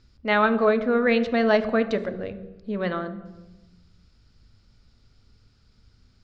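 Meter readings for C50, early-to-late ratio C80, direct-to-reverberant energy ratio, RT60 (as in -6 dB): 12.5 dB, 14.5 dB, 10.0 dB, 1.1 s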